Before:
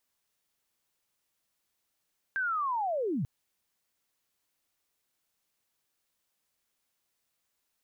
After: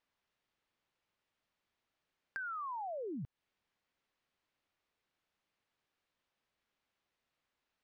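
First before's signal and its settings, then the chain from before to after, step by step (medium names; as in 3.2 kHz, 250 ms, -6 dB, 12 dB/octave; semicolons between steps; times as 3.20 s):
sweep linear 1.6 kHz -> 110 Hz -27.5 dBFS -> -28 dBFS 0.89 s
compression 5:1, threshold -41 dBFS; low-pass 3.2 kHz 12 dB/octave; overload inside the chain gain 31.5 dB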